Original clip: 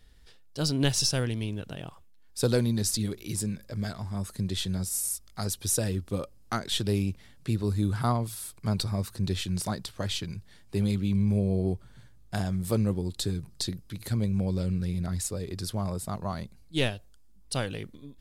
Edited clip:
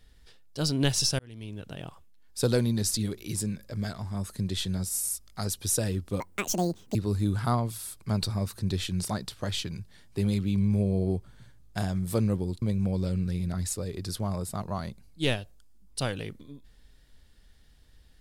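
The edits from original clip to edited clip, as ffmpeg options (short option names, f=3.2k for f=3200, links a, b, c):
-filter_complex "[0:a]asplit=5[a][b][c][d][e];[a]atrim=end=1.19,asetpts=PTS-STARTPTS,afade=t=out:st=1.186:d=0.004:c=hsin[f];[b]atrim=start=1.19:end=6.204,asetpts=PTS-STARTPTS,afade=t=in:d=0.64[g];[c]atrim=start=6.2:end=7.52,asetpts=PTS-STARTPTS,asetrate=77616,aresample=44100[h];[d]atrim=start=7.516:end=13.192[i];[e]atrim=start=14.158[j];[f][g]concat=n=2:v=0:a=1[k];[k][h]acrossfade=d=0.004:c1=hsin:c2=hsin[l];[l][i]acrossfade=d=0.004:c1=hsin:c2=hsin[m];[m][j]acrossfade=d=0.004:c1=hsin:c2=hsin"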